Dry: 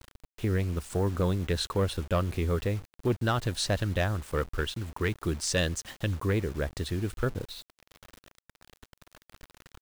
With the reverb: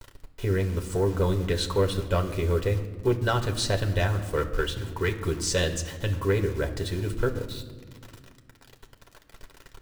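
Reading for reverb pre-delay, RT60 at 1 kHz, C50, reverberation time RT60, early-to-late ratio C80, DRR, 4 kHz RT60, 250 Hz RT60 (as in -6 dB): 4 ms, 1.3 s, 12.0 dB, 1.6 s, 14.0 dB, 4.0 dB, 0.90 s, 3.0 s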